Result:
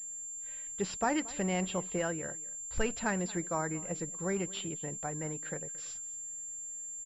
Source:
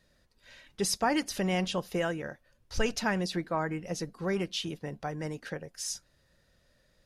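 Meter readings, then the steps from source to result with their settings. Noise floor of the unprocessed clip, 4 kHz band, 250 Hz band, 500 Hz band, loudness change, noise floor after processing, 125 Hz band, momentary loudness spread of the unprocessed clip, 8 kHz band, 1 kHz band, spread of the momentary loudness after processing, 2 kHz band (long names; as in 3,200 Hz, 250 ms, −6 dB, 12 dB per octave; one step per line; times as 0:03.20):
−69 dBFS, −8.5 dB, −3.0 dB, −3.0 dB, −2.5 dB, −43 dBFS, −3.0 dB, 11 LU, +5.0 dB, −3.0 dB, 7 LU, −3.5 dB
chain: single-tap delay 227 ms −20.5 dB
switching amplifier with a slow clock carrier 7,300 Hz
level −3 dB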